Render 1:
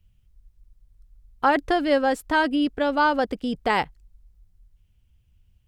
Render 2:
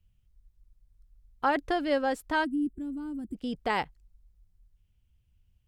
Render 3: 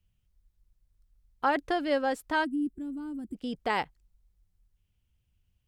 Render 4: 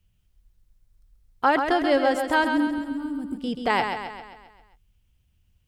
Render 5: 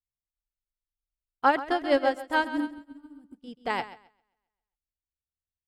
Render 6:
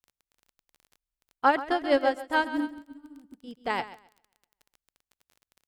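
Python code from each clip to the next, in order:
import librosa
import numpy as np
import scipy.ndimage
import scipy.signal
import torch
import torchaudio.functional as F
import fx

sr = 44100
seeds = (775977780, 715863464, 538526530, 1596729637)

y1 = fx.spec_box(x, sr, start_s=2.44, length_s=0.91, low_hz=370.0, high_hz=7300.0, gain_db=-27)
y1 = F.gain(torch.from_numpy(y1), -6.5).numpy()
y2 = fx.low_shelf(y1, sr, hz=110.0, db=-7.5)
y3 = fx.echo_feedback(y2, sr, ms=133, feedback_pct=53, wet_db=-6.5)
y3 = F.gain(torch.from_numpy(y3), 6.0).numpy()
y4 = fx.upward_expand(y3, sr, threshold_db=-40.0, expansion=2.5)
y5 = fx.dmg_crackle(y4, sr, seeds[0], per_s=20.0, level_db=-42.0)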